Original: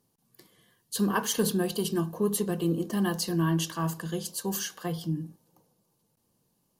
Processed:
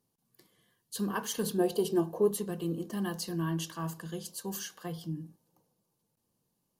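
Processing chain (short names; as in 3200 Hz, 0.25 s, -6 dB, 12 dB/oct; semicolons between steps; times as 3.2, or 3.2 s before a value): 1.58–2.31 band shelf 540 Hz +9.5 dB; gain -6.5 dB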